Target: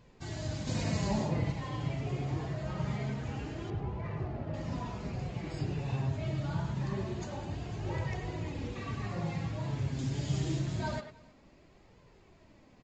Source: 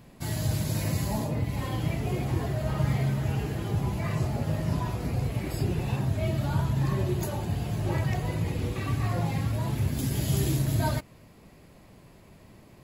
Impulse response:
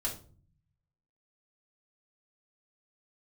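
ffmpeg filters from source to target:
-filter_complex "[0:a]asettb=1/sr,asplit=3[s0][s1][s2];[s0]atrim=end=0.674[s3];[s1]atrim=start=0.67:end=1.52,asetpts=PTS-STARTPTS,afade=t=in:d=0.004:c=qsin,afade=t=out:st=0.846:d=0.004:c=qsin,acontrast=28[s4];[s2]atrim=start=1.516[s5];[s3][s4]acrossfade=d=0.004:c1=hsin:c2=qsin[s6];[s6][s5]acrossfade=d=0.004:c1=qsin:c2=hsin,flanger=delay=1.9:depth=5.7:regen=40:speed=0.25:shape=triangular,asettb=1/sr,asplit=3[s7][s8][s9];[s7]atrim=end=3.704[s10];[s8]atrim=start=3.7:end=4.54,asetpts=PTS-STARTPTS,afade=t=in:d=0.004:c=qsin,afade=t=out:st=0.836:d=0.004:c=qsin,adynamicsmooth=sensitivity=3:basefreq=1900[s11];[s9]atrim=start=4.536[s12];[s10][s11]acrossfade=d=0.004:c1=hsin:c2=qsin[s13];[s13][s12]acrossfade=d=0.004:c1=qsin:c2=hsin,asplit=2[s14][s15];[s15]aecho=0:1:311:0.0631[s16];[s14][s16]amix=inputs=2:normalize=0,aresample=16000,aresample=44100,asplit=2[s17][s18];[s18]adelay=100,highpass=300,lowpass=3400,asoftclip=type=hard:threshold=0.0501,volume=0.501[s19];[s17][s19]amix=inputs=2:normalize=0,volume=0.708"

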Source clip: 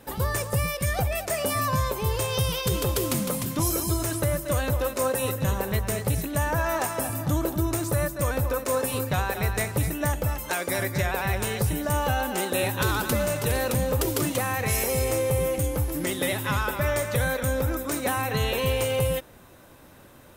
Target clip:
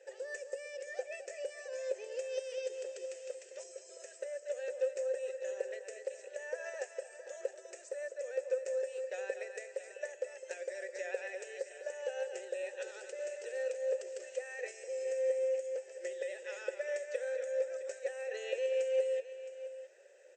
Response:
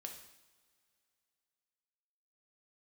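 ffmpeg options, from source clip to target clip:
-filter_complex "[0:a]aexciter=amount=9.5:drive=6.3:freq=5500,acompressor=threshold=0.126:ratio=5,afftfilt=real='re*between(b*sr/4096,350,8300)':imag='im*between(b*sr/4096,350,8300)':win_size=4096:overlap=0.75,asplit=3[s0][s1][s2];[s0]bandpass=f=530:t=q:w=8,volume=1[s3];[s1]bandpass=f=1840:t=q:w=8,volume=0.501[s4];[s2]bandpass=f=2480:t=q:w=8,volume=0.355[s5];[s3][s4][s5]amix=inputs=3:normalize=0,asplit=2[s6][s7];[s7]aecho=0:1:666:0.224[s8];[s6][s8]amix=inputs=2:normalize=0,volume=1.12"

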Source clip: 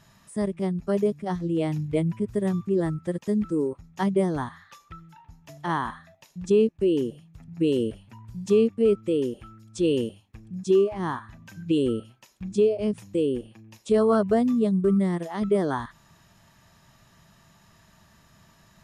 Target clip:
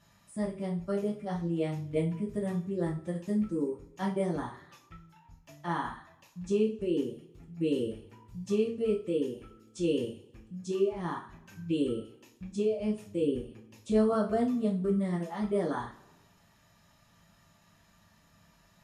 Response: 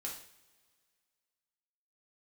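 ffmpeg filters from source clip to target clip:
-filter_complex "[0:a]asettb=1/sr,asplit=3[s0][s1][s2];[s0]atrim=end=13.224[s3];[s1]atrim=start=13.22:end=14.13,asetpts=PTS-STARTPTS,afade=t=in:d=0.004:c=qsin,afade=t=out:st=0.906:d=0.004:c=qsin,lowshelf=f=180:g=8[s4];[s2]atrim=start=14.126[s5];[s3][s4]acrossfade=d=0.004:c1=hsin:c2=qsin[s6];[s6][s5]acrossfade=d=0.004:c1=qsin:c2=hsin[s7];[1:a]atrim=start_sample=2205,asetrate=74970,aresample=44100[s8];[s7][s8]afir=irnorm=-1:irlink=0"

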